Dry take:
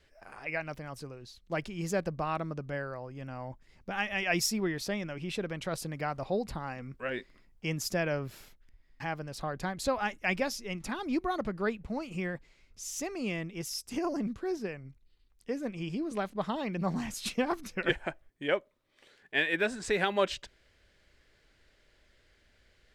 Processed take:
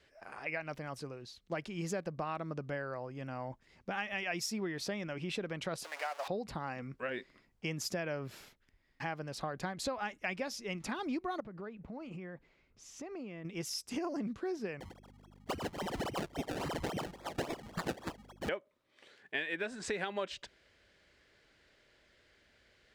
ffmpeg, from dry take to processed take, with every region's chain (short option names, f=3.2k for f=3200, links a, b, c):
-filter_complex "[0:a]asettb=1/sr,asplit=3[a][b][c];[a]atrim=end=5.844[d];[b]atrim=start=5.84:end=6.28,asetpts=PTS-STARTPTS,afade=t=in:d=0.004:c=qsin,afade=t=out:st=0.436:d=0.004:c=qsin,aeval=exprs='val(0)+0.5*0.015*sgn(val(0))':c=same,highpass=f=630:w=0.5412,highpass=f=630:w=1.3066,aecho=1:1:7.1:0.37,atrim=end_sample=19404[e];[c]atrim=start=6.276[f];[d][e]acrossfade=d=0.004:c1=hsin:c2=qsin[g];[g][f]acrossfade=d=0.004:c1=qsin:c2=hsin,asettb=1/sr,asplit=3[h][i][j];[h]atrim=end=11.404[k];[i]atrim=start=11.4:end=13.45,asetpts=PTS-STARTPTS,afade=t=in:d=0.004:c=qsin,afade=t=out:st=2.046:d=0.004:c=qsin,lowpass=f=1.4k:p=1,acompressor=threshold=-40dB:ratio=16:attack=3.2:release=140:knee=1:detection=peak[l];[j]atrim=start=13.446[m];[k][l]acrossfade=d=0.004:c1=hsin:c2=qsin[n];[n][m]acrossfade=d=0.004:c1=qsin:c2=hsin,asettb=1/sr,asplit=3[o][p][q];[o]atrim=end=14.804[r];[p]atrim=start=14.8:end=18.49,asetpts=PTS-STARTPTS,afade=t=in:d=0.004:c=qsin,afade=t=out:st=3.686:d=0.004:c=qsin,lowpass=f=2.8k:t=q:w=0.5098,lowpass=f=2.8k:t=q:w=0.6013,lowpass=f=2.8k:t=q:w=0.9,lowpass=f=2.8k:t=q:w=2.563,afreqshift=-3300,acrusher=samples=29:mix=1:aa=0.000001:lfo=1:lforange=29:lforate=3.6,aeval=exprs='val(0)+0.00224*(sin(2*PI*50*n/s)+sin(2*PI*2*50*n/s)/2+sin(2*PI*3*50*n/s)/3+sin(2*PI*4*50*n/s)/4+sin(2*PI*5*50*n/s)/5)':c=same[s];[q]atrim=start=18.486[t];[r][s]acrossfade=d=0.004:c1=hsin:c2=qsin[u];[u][t]acrossfade=d=0.004:c1=qsin:c2=hsin,highpass=f=140:p=1,highshelf=f=11k:g=-11,acompressor=threshold=-35dB:ratio=5,volume=1dB"